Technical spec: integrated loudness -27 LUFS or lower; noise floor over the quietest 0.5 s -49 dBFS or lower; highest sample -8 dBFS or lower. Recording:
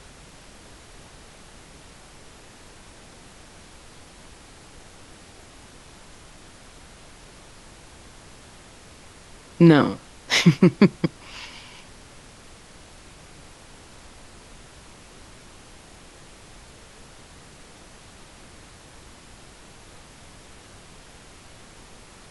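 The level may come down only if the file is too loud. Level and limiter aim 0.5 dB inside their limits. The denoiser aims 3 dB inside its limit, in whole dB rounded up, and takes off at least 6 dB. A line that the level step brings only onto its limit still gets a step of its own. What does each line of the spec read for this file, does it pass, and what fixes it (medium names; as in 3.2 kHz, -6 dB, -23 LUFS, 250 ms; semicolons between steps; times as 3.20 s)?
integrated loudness -19.5 LUFS: fail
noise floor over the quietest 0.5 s -47 dBFS: fail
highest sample -2.0 dBFS: fail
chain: trim -8 dB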